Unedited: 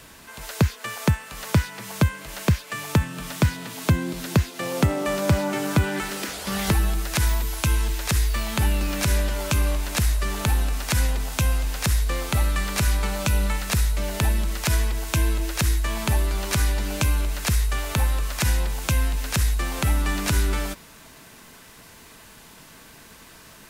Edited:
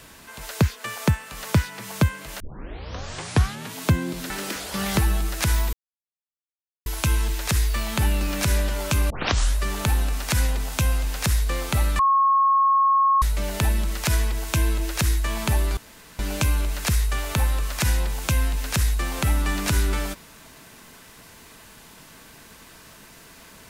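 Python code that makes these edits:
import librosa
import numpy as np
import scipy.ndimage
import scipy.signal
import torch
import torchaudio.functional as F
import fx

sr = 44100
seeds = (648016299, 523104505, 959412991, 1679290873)

y = fx.edit(x, sr, fx.tape_start(start_s=2.4, length_s=1.35),
    fx.cut(start_s=4.3, length_s=1.73),
    fx.insert_silence(at_s=7.46, length_s=1.13),
    fx.tape_start(start_s=9.7, length_s=0.47),
    fx.bleep(start_s=12.59, length_s=1.23, hz=1090.0, db=-15.0),
    fx.room_tone_fill(start_s=16.37, length_s=0.42), tone=tone)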